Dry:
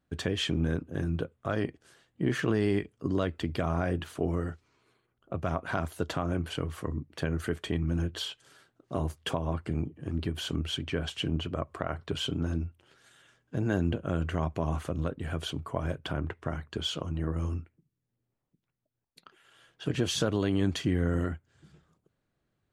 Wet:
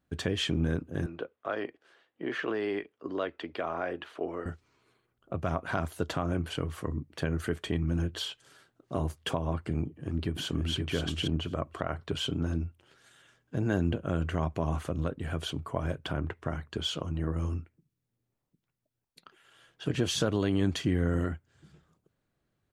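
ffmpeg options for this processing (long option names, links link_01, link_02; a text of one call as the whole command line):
ffmpeg -i in.wav -filter_complex "[0:a]asettb=1/sr,asplit=3[link_01][link_02][link_03];[link_01]atrim=end=1.064[link_04];[link_02]atrim=start=1.06:end=4.46,asetpts=PTS-STARTPTS,afade=type=in:duration=0.004:curve=qsin,afade=type=out:start_time=3.396:duration=0.004:curve=qsin,acrossover=split=310 4100:gain=0.0708 1 0.112[link_05][link_06][link_07];[link_05][link_06][link_07]amix=inputs=3:normalize=0[link_08];[link_03]atrim=start=4.456[link_09];[link_04][link_08]acrossfade=duration=0.004:curve1=hsin:curve2=qsin[link_10];[link_10][link_09]acrossfade=duration=0.004:curve1=qsin:curve2=hsin,asplit=2[link_11][link_12];[link_12]afade=type=in:start_time=9.83:duration=0.01,afade=type=out:start_time=10.74:duration=0.01,aecho=0:1:530|1060:0.630957|0.0630957[link_13];[link_11][link_13]amix=inputs=2:normalize=0" out.wav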